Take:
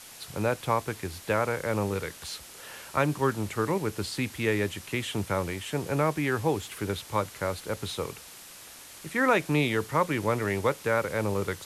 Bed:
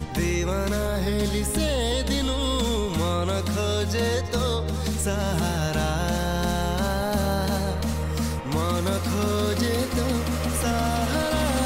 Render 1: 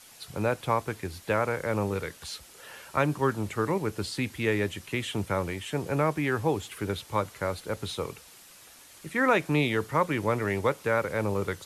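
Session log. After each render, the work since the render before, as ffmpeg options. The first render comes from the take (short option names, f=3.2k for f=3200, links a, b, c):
-af "afftdn=nr=6:nf=-47"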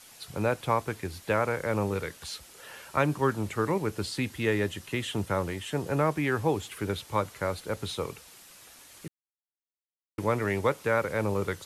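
-filter_complex "[0:a]asettb=1/sr,asplit=3[a][b][c];[a]atrim=end=4.224[d];[b]atrim=start=4.22:end=6.12,asetpts=PTS-STARTPTS,afade=t=in:d=0.004:c=qsin,afade=t=out:st=1.896:d=0.004:c=qsin,bandreject=f=2.3k:w=12[e];[c]atrim=start=6.116[f];[d][e]acrossfade=d=0.004:c1=hsin:c2=qsin[g];[g][f]acrossfade=d=0.004:c1=qsin:c2=hsin,asplit=3[h][i][j];[h]atrim=end=9.08,asetpts=PTS-STARTPTS,afade=t=out:st=9.076:d=0.004:c=hsin[k];[i]atrim=start=9.08:end=10.18,asetpts=PTS-STARTPTS,volume=0[l];[j]atrim=start=10.18,asetpts=PTS-STARTPTS,afade=t=in:d=0.004:c=hsin[m];[k][l][m]concat=n=3:v=0:a=1"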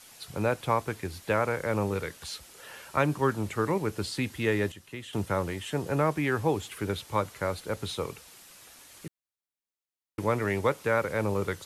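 -filter_complex "[0:a]asplit=3[a][b][c];[a]atrim=end=4.722[d];[b]atrim=start=4.718:end=5.132,asetpts=PTS-STARTPTS,volume=-9dB[e];[c]atrim=start=5.128[f];[d][e]acrossfade=d=0.004:c1=hsin:c2=hsin[g];[g][f]acrossfade=d=0.004:c1=hsin:c2=hsin"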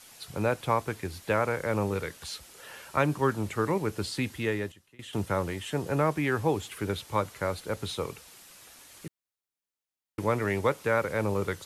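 -filter_complex "[0:a]asplit=2[a][b];[a]atrim=end=4.99,asetpts=PTS-STARTPTS,afade=t=out:st=4.3:d=0.69:silence=0.0707946[c];[b]atrim=start=4.99,asetpts=PTS-STARTPTS,afade=t=in:d=0.004:c=hsin:silence=0.0707946[d];[c][d]concat=n=2:v=0:a=1"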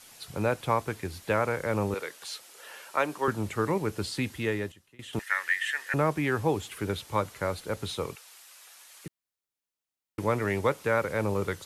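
-filter_complex "[0:a]asettb=1/sr,asplit=3[a][b][c];[a]atrim=end=1.944[d];[b]atrim=start=1.94:end=3.28,asetpts=PTS-STARTPTS,afade=t=in:d=0.004:c=qsin,afade=t=out:st=1.336:d=0.004:c=qsin,highpass=390[e];[c]atrim=start=3.276[f];[d][e]acrossfade=d=0.004:c1=hsin:c2=qsin[g];[g][f]acrossfade=d=0.004:c1=qsin:c2=hsin,asettb=1/sr,asplit=3[h][i][j];[h]atrim=end=5.194[k];[i]atrim=start=5.19:end=5.94,asetpts=PTS-STARTPTS,afade=t=in:d=0.004:c=qsin,afade=t=out:st=0.746:d=0.004:c=qsin,highpass=f=1.8k:t=q:w=12[l];[j]atrim=start=5.936[m];[k][l]acrossfade=d=0.004:c1=hsin:c2=qsin[n];[n][m]acrossfade=d=0.004:c1=qsin:c2=hsin,asettb=1/sr,asplit=3[o][p][q];[o]atrim=end=8.154[r];[p]atrim=start=8.15:end=9.06,asetpts=PTS-STARTPTS,afade=t=in:d=0.004:c=qsin,afade=t=out:st=0.906:d=0.004:c=qsin,highpass=770[s];[q]atrim=start=9.056[t];[r][s]acrossfade=d=0.004:c1=hsin:c2=qsin[u];[u][t]acrossfade=d=0.004:c1=qsin:c2=hsin"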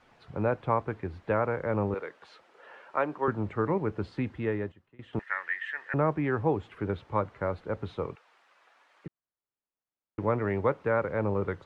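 -af "lowpass=1.5k"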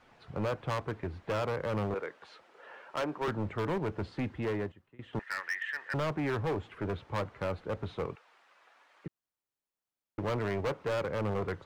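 -af "asoftclip=type=hard:threshold=-28.5dB"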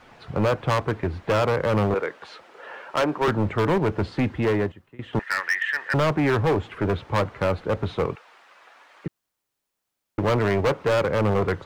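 -af "volume=11dB"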